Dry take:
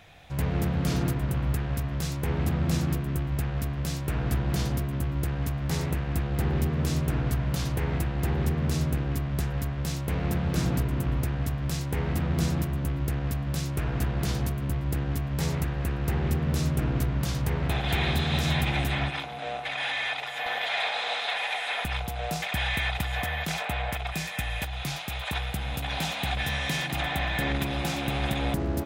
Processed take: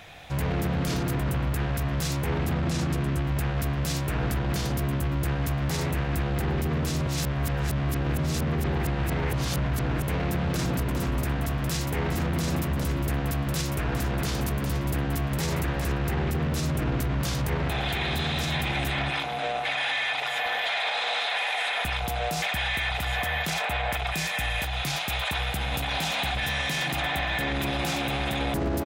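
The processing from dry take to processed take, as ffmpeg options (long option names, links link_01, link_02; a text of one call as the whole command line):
ffmpeg -i in.wav -filter_complex "[0:a]asettb=1/sr,asplit=3[link_01][link_02][link_03];[link_01]atrim=end=2.644[link_04];[link_02]atrim=start=2.64:end=3.22,asetpts=PTS-STARTPTS,afade=type=in:duration=0.004:curve=qsin,afade=type=out:start_time=0.576:duration=0.004:curve=qsin,lowpass=10000[link_05];[link_03]atrim=start=3.216[link_06];[link_04][link_05]acrossfade=duration=0.004:curve1=hsin:curve2=qsin[link_07];[link_07][link_06]acrossfade=duration=0.004:curve1=qsin:curve2=hsin,asplit=3[link_08][link_09][link_10];[link_08]afade=type=out:start_time=10.73:duration=0.02[link_11];[link_09]aecho=1:1:408:0.299,afade=type=in:start_time=10.73:duration=0.02,afade=type=out:start_time=15.91:duration=0.02[link_12];[link_10]afade=type=in:start_time=15.91:duration=0.02[link_13];[link_11][link_12][link_13]amix=inputs=3:normalize=0,asplit=3[link_14][link_15][link_16];[link_14]atrim=end=7.072[link_17];[link_15]atrim=start=7.068:end=10.032,asetpts=PTS-STARTPTS,areverse[link_18];[link_16]atrim=start=10.028[link_19];[link_17][link_18]acrossfade=duration=0.004:curve1=hsin:curve2=hsin[link_20];[link_20][link_19]acrossfade=duration=0.004:curve1=hsin:curve2=hsin,lowshelf=frequency=250:gain=-5,alimiter=level_in=3dB:limit=-24dB:level=0:latency=1:release=18,volume=-3dB,volume=7.5dB" out.wav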